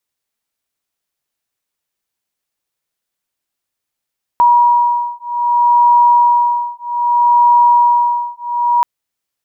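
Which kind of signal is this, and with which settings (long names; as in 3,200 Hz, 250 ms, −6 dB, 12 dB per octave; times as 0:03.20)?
two tones that beat 959 Hz, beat 0.63 Hz, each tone −11.5 dBFS 4.43 s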